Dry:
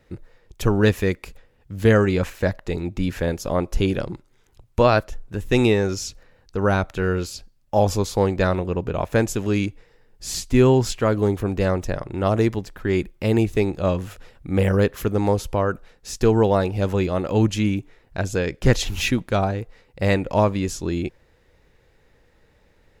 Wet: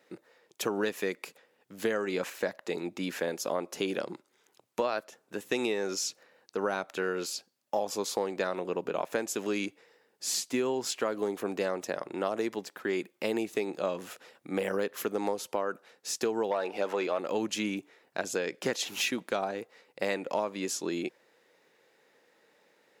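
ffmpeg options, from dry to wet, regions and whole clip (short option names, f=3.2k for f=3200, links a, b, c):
-filter_complex "[0:a]asettb=1/sr,asplit=3[a][b][c];[a]atrim=end=16.514[d];[b]atrim=start=16.51:end=17.19,asetpts=PTS-STARTPTS,afade=t=in:d=0.004:c=qsin,afade=t=out:st=0.676:d=0.004:c=qsin,highpass=f=170:p=1,asplit=2[e][f];[f]highpass=f=720:p=1,volume=14dB,asoftclip=type=tanh:threshold=-6.5dB[g];[e][g]amix=inputs=2:normalize=0,lowpass=f=2k:p=1,volume=-6dB[h];[c]atrim=start=17.186[i];[d][h]acrossfade=d=0.004:c1=hsin:c2=qsin[j];[j][i]acrossfade=d=0.004:c1=qsin:c2=hsin,highpass=f=170:w=0.5412,highpass=f=170:w=1.3066,bass=f=250:g=-12,treble=f=4k:g=2,acompressor=threshold=-24dB:ratio=6,volume=-2.5dB"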